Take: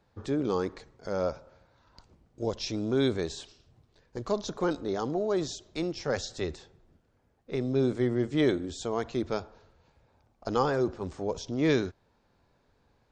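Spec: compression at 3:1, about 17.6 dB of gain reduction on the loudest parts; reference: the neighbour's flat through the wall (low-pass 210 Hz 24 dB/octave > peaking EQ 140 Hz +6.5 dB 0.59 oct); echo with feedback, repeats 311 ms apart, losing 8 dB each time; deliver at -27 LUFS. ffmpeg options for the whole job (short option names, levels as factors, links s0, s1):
-af "acompressor=threshold=0.00501:ratio=3,lowpass=f=210:w=0.5412,lowpass=f=210:w=1.3066,equalizer=f=140:t=o:w=0.59:g=6.5,aecho=1:1:311|622|933|1244|1555:0.398|0.159|0.0637|0.0255|0.0102,volume=15.8"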